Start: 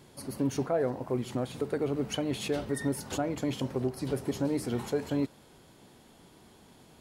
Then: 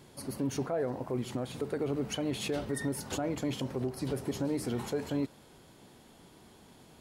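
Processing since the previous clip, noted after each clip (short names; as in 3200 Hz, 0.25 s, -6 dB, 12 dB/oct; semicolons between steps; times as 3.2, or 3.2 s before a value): limiter -23.5 dBFS, peak gain reduction 5 dB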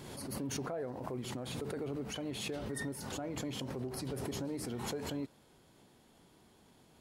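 backwards sustainer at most 30 dB/s; gain -7.5 dB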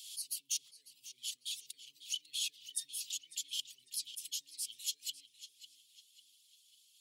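reverb removal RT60 0.78 s; elliptic high-pass 3000 Hz, stop band 50 dB; darkening echo 0.548 s, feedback 50%, low-pass 4500 Hz, level -11 dB; gain +7.5 dB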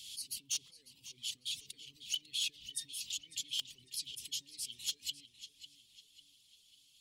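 tilt -3.5 dB/oct; in parallel at -9 dB: wrapped overs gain 32.5 dB; on the sum: gain +6 dB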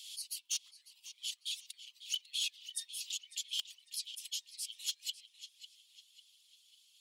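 inverse Chebyshev high-pass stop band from 430 Hz, stop band 40 dB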